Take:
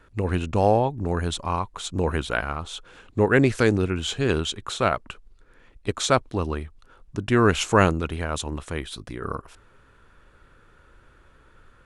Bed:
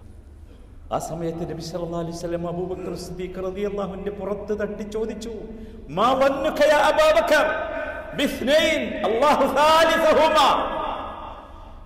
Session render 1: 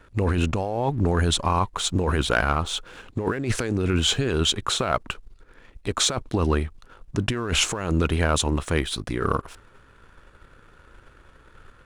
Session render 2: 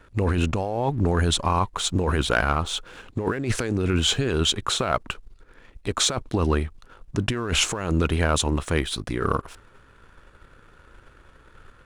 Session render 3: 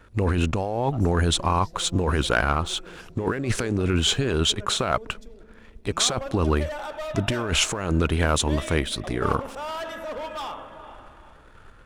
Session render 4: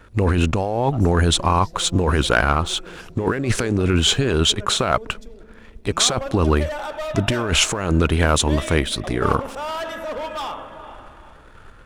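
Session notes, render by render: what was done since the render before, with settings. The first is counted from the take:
compressor whose output falls as the input rises −26 dBFS, ratio −1; leveller curve on the samples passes 1
no processing that can be heard
mix in bed −16.5 dB
level +4.5 dB

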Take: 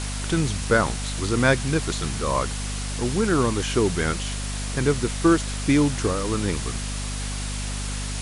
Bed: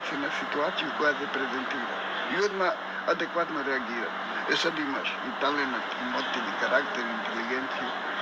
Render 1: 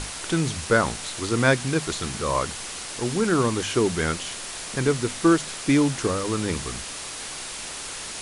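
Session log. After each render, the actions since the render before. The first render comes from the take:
mains-hum notches 50/100/150/200/250 Hz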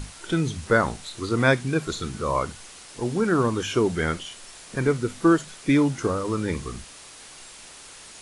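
noise reduction from a noise print 10 dB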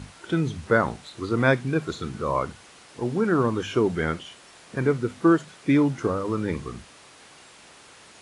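high-pass filter 80 Hz
high-shelf EQ 4,300 Hz −12 dB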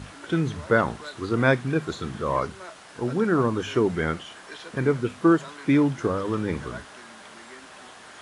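mix in bed −15.5 dB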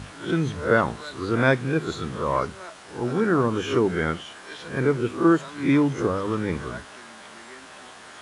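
peak hold with a rise ahead of every peak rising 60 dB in 0.37 s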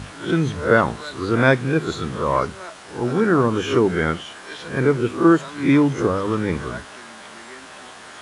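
level +4 dB

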